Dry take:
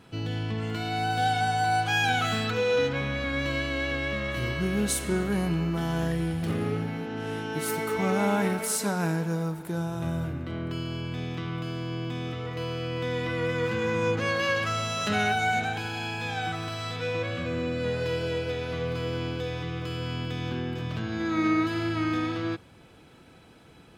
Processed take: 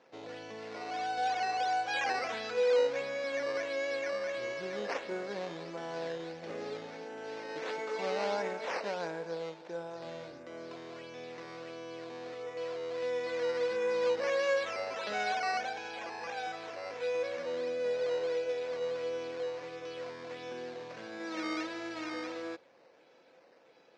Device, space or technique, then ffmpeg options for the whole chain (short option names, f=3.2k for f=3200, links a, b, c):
circuit-bent sampling toy: -af "acrusher=samples=9:mix=1:aa=0.000001:lfo=1:lforange=9:lforate=1.5,highpass=470,equalizer=f=530:t=q:w=4:g=10,equalizer=f=1.3k:t=q:w=4:g=-5,equalizer=f=3.1k:t=q:w=4:g=-5,lowpass=f=5.2k:w=0.5412,lowpass=f=5.2k:w=1.3066,volume=-6dB"